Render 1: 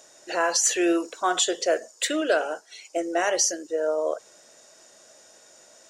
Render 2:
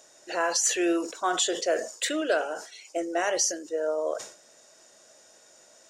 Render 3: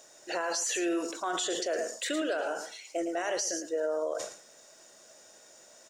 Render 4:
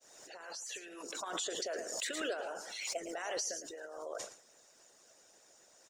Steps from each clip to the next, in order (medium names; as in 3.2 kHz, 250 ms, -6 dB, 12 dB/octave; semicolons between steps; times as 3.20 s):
decay stretcher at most 110 dB/s; trim -3 dB
word length cut 12-bit, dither none; delay 109 ms -11.5 dB; peak limiter -23 dBFS, peak gain reduction 10 dB
fade-in on the opening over 1.57 s; harmonic-percussive split harmonic -18 dB; swell ahead of each attack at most 42 dB/s; trim -2.5 dB